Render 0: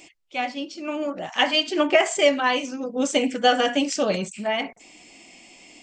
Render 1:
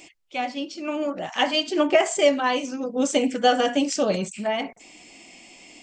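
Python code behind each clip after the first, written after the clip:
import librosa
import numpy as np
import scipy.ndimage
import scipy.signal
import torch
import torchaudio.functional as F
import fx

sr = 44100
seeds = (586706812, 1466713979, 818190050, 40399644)

y = fx.dynamic_eq(x, sr, hz=2200.0, q=0.7, threshold_db=-33.0, ratio=4.0, max_db=-5)
y = y * librosa.db_to_amplitude(1.0)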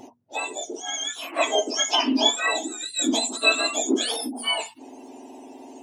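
y = fx.octave_mirror(x, sr, pivot_hz=1400.0)
y = fx.hum_notches(y, sr, base_hz=60, count=4)
y = y * librosa.db_to_amplitude(2.0)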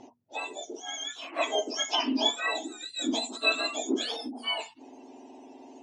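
y = scipy.signal.sosfilt(scipy.signal.butter(4, 6400.0, 'lowpass', fs=sr, output='sos'), x)
y = y * librosa.db_to_amplitude(-6.0)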